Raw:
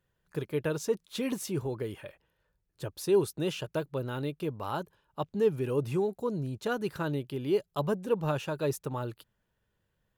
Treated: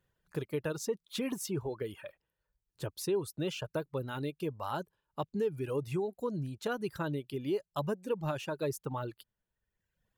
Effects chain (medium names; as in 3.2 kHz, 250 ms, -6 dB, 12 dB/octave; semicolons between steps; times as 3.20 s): reverb removal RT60 1.1 s; compression 2.5:1, threshold -31 dBFS, peak gain reduction 8 dB